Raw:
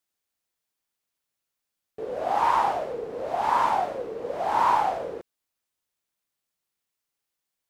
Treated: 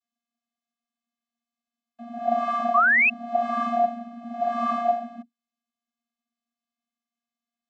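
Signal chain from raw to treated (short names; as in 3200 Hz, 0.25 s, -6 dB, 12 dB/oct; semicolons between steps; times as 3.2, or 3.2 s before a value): vocoder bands 32, square 235 Hz; painted sound rise, 2.74–3.1, 1100–2700 Hz -18 dBFS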